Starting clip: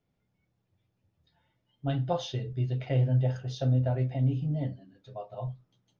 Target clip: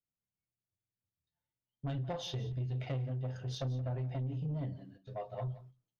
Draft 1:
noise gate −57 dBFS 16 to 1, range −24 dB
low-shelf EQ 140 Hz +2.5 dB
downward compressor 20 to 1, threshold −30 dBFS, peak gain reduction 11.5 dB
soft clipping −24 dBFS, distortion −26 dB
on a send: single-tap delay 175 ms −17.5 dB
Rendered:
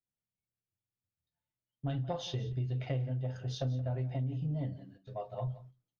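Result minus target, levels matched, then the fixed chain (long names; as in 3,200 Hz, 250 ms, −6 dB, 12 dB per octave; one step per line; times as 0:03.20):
soft clipping: distortion −11 dB
noise gate −57 dBFS 16 to 1, range −24 dB
low-shelf EQ 140 Hz +2.5 dB
downward compressor 20 to 1, threshold −30 dBFS, peak gain reduction 11.5 dB
soft clipping −31.5 dBFS, distortion −15 dB
on a send: single-tap delay 175 ms −17.5 dB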